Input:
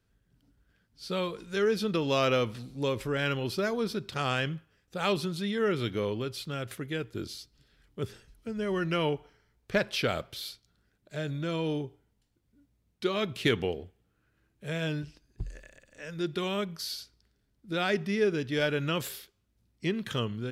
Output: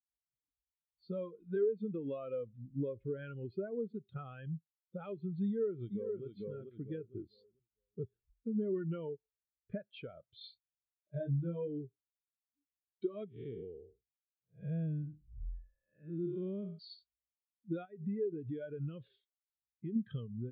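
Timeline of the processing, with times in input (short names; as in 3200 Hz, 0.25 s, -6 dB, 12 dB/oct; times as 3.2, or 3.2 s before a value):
5.45–6.24 echo throw 0.45 s, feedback 35%, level -4 dB
10.4–11.68 doubler 29 ms -2.5 dB
13.28–16.79 time blur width 0.258 s
17.85–19.96 compressor 4:1, threshold -36 dBFS
whole clip: steep low-pass 4400 Hz; compressor 10:1, threshold -37 dBFS; spectral expander 2.5:1; gain +2 dB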